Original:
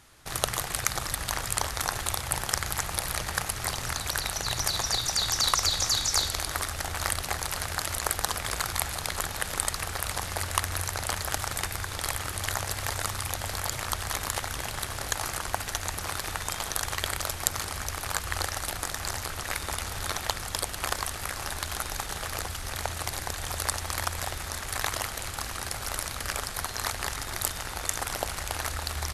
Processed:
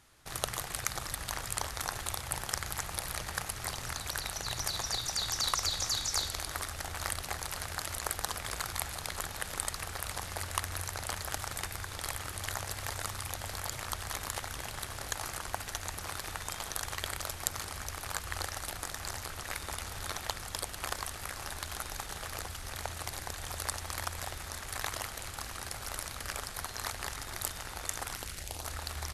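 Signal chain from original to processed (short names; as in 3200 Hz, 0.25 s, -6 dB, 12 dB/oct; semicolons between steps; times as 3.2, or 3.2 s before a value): 28.13–28.66 bell 510 Hz -> 2000 Hz -14 dB 0.95 oct; gain -6.5 dB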